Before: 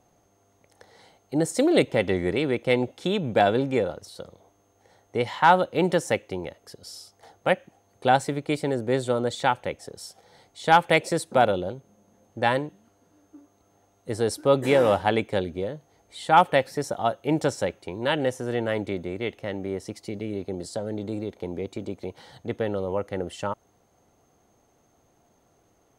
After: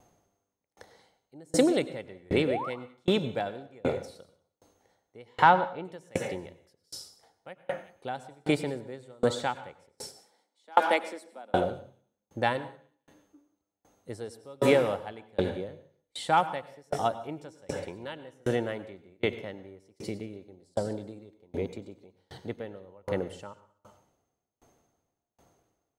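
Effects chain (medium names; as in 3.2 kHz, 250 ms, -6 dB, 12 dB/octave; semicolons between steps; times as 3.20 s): 2.47–2.70 s: painted sound rise 460–1500 Hz -23 dBFS; 5.44–5.85 s: distance through air 180 m; 9.92–11.54 s: rippled Chebyshev high-pass 200 Hz, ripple 3 dB; feedback echo behind a high-pass 187 ms, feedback 36%, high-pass 2.6 kHz, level -15.5 dB; reverberation RT60 0.75 s, pre-delay 87 ms, DRR 8.5 dB; sawtooth tremolo in dB decaying 1.3 Hz, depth 35 dB; trim +3 dB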